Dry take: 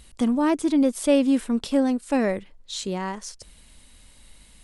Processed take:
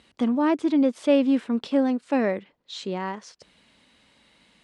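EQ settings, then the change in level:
band-pass filter 180–3,700 Hz
0.0 dB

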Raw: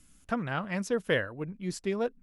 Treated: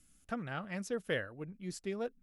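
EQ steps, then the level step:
high-shelf EQ 7,200 Hz +4.5 dB
notch filter 1,000 Hz, Q 8.2
−7.5 dB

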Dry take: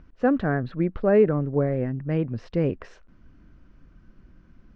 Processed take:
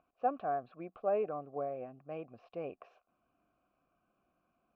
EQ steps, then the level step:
formant filter a
0.0 dB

